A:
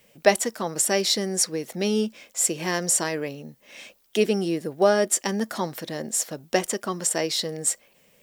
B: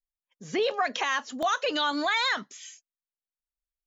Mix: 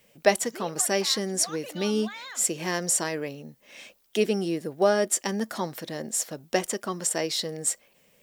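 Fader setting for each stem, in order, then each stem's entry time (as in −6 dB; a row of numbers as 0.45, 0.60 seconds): −2.5, −15.0 decibels; 0.00, 0.00 seconds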